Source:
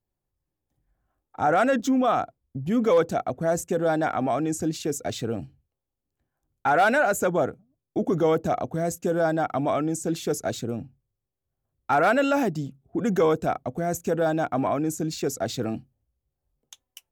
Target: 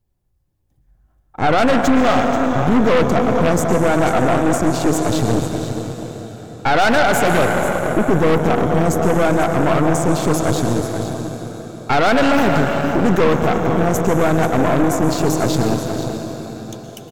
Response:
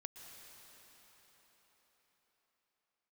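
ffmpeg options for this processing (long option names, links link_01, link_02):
-filter_complex "[0:a]lowshelf=frequency=170:gain=11,aecho=1:1:486:0.282[link_01];[1:a]atrim=start_sample=2205[link_02];[link_01][link_02]afir=irnorm=-1:irlink=0,aeval=exprs='0.237*(cos(1*acos(clip(val(0)/0.237,-1,1)))-cos(1*PI/2))+0.0422*(cos(5*acos(clip(val(0)/0.237,-1,1)))-cos(5*PI/2))+0.0473*(cos(8*acos(clip(val(0)/0.237,-1,1)))-cos(8*PI/2))':channel_layout=same,volume=6.5dB"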